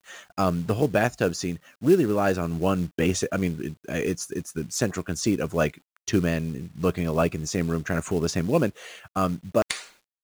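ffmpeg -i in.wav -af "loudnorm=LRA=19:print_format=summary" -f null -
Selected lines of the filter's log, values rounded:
Input Integrated:    -26.1 LUFS
Input True Peak:      -7.6 dBTP
Input LRA:             2.6 LU
Input Threshold:     -36.4 LUFS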